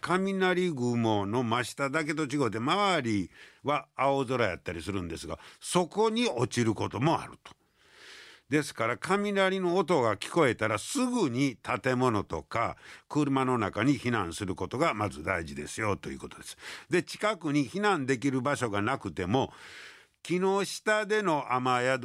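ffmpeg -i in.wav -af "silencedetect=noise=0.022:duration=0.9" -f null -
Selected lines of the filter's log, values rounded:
silence_start: 7.46
silence_end: 8.52 | silence_duration: 1.06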